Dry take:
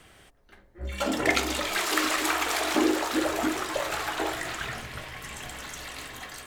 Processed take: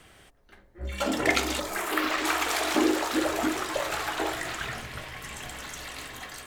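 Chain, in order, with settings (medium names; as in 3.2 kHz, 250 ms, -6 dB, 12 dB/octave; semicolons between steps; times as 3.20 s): 1.59–2.25 s: peaking EQ 2.2 kHz -> 14 kHz -14 dB 1.2 oct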